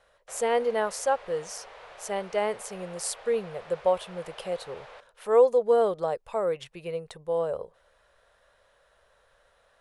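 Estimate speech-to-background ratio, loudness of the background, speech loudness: 19.0 dB, −47.0 LKFS, −28.0 LKFS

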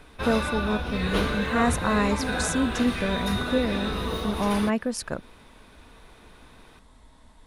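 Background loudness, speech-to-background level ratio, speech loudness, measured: −29.0 LKFS, 1.5 dB, −27.5 LKFS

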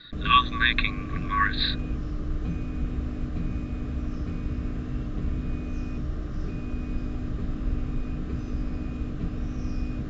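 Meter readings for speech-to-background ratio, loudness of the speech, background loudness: 9.0 dB, −24.0 LKFS, −33.0 LKFS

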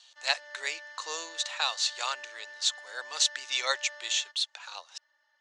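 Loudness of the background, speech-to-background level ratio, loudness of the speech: −46.0 LKFS, 16.0 dB, −30.0 LKFS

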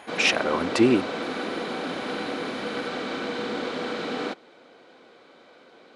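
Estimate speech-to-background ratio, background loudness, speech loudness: 8.0 dB, −30.5 LKFS, −22.5 LKFS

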